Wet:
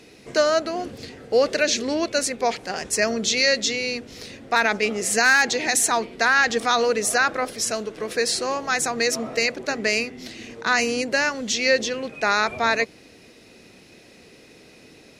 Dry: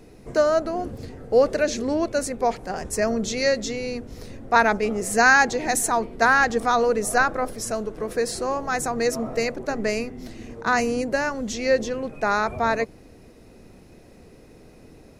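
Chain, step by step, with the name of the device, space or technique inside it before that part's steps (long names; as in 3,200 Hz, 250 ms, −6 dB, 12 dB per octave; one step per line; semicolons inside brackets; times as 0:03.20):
meter weighting curve D
clipper into limiter (hard clipping −3.5 dBFS, distortion −27 dB; brickwall limiter −9 dBFS, peak gain reduction 5.5 dB)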